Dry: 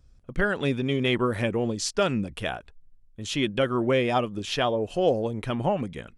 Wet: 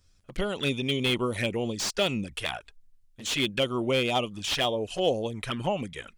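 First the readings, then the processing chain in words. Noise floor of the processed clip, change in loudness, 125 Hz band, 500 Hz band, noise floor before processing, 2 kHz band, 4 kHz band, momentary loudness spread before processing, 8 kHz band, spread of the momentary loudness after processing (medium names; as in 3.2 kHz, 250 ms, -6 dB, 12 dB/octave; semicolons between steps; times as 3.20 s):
-62 dBFS, -2.0 dB, -4.0 dB, -3.5 dB, -55 dBFS, -1.5 dB, +4.0 dB, 8 LU, +1.0 dB, 8 LU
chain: touch-sensitive flanger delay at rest 11.8 ms, full sweep at -22 dBFS; tilt shelf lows -7 dB, about 1.3 kHz; slew-rate limiter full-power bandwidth 150 Hz; trim +3 dB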